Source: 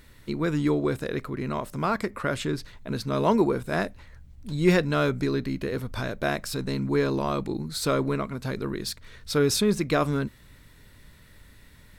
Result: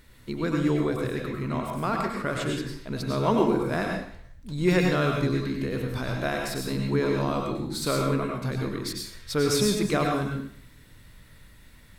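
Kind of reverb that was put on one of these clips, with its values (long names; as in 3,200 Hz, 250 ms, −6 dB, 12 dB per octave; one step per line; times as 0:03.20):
dense smooth reverb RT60 0.55 s, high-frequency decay 0.95×, pre-delay 85 ms, DRR 0.5 dB
level −2.5 dB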